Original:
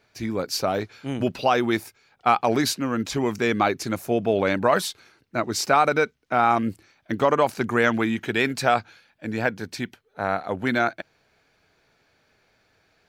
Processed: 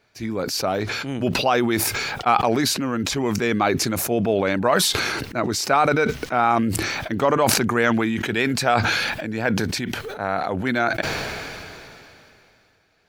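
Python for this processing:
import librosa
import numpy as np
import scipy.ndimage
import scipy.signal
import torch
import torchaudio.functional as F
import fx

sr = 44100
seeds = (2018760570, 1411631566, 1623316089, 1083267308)

y = fx.sustainer(x, sr, db_per_s=22.0)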